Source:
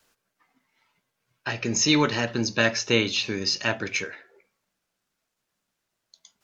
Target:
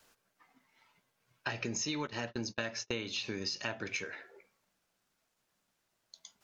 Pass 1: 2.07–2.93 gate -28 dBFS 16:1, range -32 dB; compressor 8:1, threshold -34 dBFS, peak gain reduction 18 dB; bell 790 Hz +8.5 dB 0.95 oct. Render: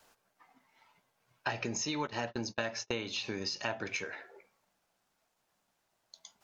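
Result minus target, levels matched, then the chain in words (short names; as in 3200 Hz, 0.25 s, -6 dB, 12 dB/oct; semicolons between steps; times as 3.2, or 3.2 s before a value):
1000 Hz band +4.0 dB
2.07–2.93 gate -28 dBFS 16:1, range -32 dB; compressor 8:1, threshold -34 dBFS, peak gain reduction 18 dB; bell 790 Hz +2 dB 0.95 oct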